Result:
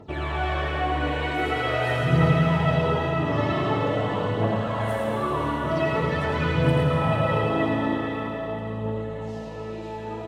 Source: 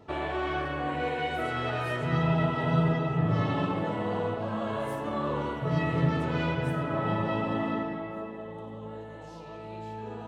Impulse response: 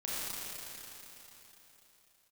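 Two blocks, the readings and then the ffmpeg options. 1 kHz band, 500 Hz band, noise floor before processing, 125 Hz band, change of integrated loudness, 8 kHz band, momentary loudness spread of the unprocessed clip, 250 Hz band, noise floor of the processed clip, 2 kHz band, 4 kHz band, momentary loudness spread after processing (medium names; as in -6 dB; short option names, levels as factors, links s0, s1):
+5.5 dB, +6.5 dB, -43 dBFS, +5.0 dB, +5.0 dB, no reading, 15 LU, +4.0 dB, -34 dBFS, +6.0 dB, +7.0 dB, 10 LU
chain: -filter_complex "[0:a]aphaser=in_gain=1:out_gain=1:delay=3.6:decay=0.64:speed=0.45:type=triangular,aecho=1:1:82|108:0.501|0.562,asplit=2[s0][s1];[1:a]atrim=start_sample=2205,adelay=128[s2];[s1][s2]afir=irnorm=-1:irlink=0,volume=0.473[s3];[s0][s3]amix=inputs=2:normalize=0"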